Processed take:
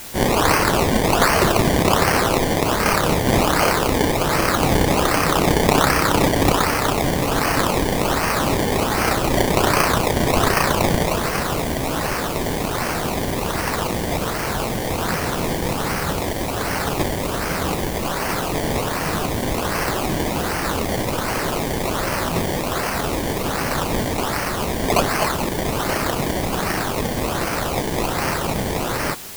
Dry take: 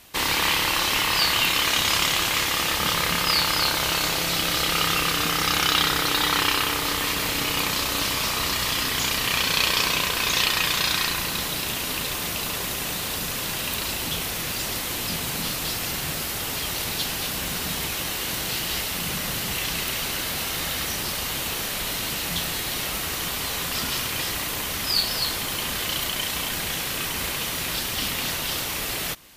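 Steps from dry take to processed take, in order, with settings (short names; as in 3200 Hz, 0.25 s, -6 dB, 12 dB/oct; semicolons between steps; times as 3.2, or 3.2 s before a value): decimation with a swept rate 23×, swing 100% 1.3 Hz; added noise white -41 dBFS; gain +5.5 dB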